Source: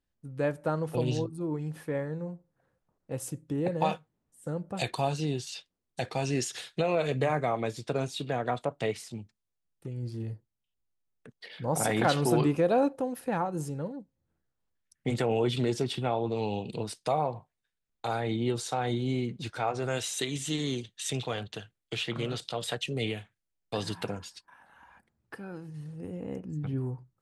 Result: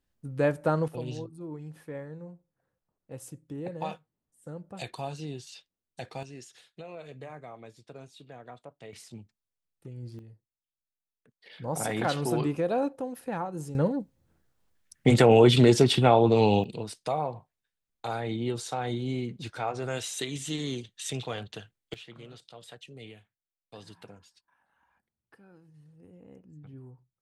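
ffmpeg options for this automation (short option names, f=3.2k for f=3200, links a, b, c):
-af "asetnsamples=n=441:p=0,asendcmd='0.88 volume volume -7dB;6.23 volume volume -16dB;8.93 volume volume -5dB;10.19 volume volume -14dB;11.46 volume volume -3dB;13.75 volume volume 10dB;16.64 volume volume -1.5dB;21.94 volume volume -14.5dB',volume=4dB"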